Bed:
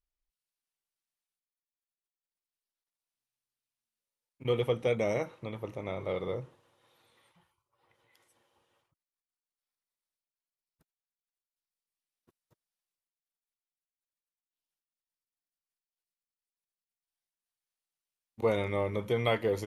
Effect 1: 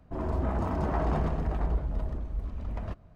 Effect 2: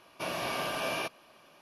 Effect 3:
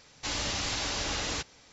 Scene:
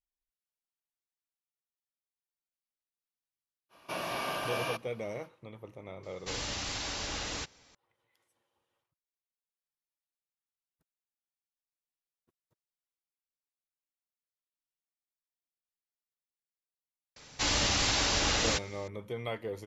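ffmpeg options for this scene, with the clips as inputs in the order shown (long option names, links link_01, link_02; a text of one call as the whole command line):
ffmpeg -i bed.wav -i cue0.wav -i cue1.wav -i cue2.wav -filter_complex "[3:a]asplit=2[link_01][link_02];[0:a]volume=-8.5dB[link_03];[2:a]equalizer=frequency=1100:width=1.2:gain=2.5[link_04];[link_02]acontrast=34[link_05];[link_04]atrim=end=1.61,asetpts=PTS-STARTPTS,volume=-2.5dB,afade=type=in:duration=0.05,afade=type=out:start_time=1.56:duration=0.05,adelay=162729S[link_06];[link_01]atrim=end=1.72,asetpts=PTS-STARTPTS,volume=-4.5dB,afade=type=in:duration=0.004:curve=hsin,afade=type=out:start_time=1.716:duration=0.004:curve=hsin,adelay=6030[link_07];[link_05]atrim=end=1.72,asetpts=PTS-STARTPTS,volume=-1.5dB,afade=type=in:duration=0.004:curve=hsin,afade=type=out:start_time=1.716:duration=0.004:curve=hsin,adelay=756756S[link_08];[link_03][link_06][link_07][link_08]amix=inputs=4:normalize=0" out.wav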